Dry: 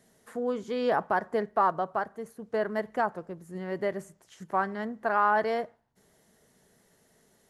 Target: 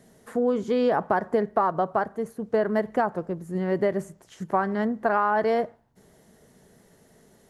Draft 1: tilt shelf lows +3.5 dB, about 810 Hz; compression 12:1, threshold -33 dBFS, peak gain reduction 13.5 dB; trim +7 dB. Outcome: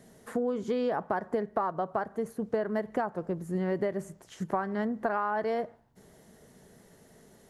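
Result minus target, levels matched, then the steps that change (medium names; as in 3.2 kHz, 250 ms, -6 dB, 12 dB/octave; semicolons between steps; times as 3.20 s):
compression: peak gain reduction +7.5 dB
change: compression 12:1, threshold -25 dBFS, peak gain reduction 6.5 dB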